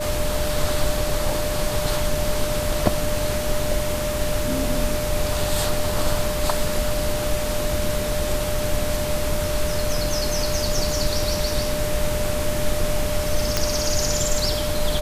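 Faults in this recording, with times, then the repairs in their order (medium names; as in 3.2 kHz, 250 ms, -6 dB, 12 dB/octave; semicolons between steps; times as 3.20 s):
whine 600 Hz -26 dBFS
13.57 s: pop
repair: de-click; band-stop 600 Hz, Q 30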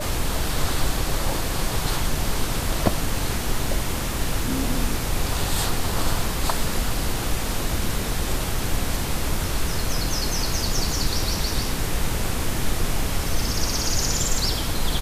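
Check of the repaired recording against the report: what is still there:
nothing left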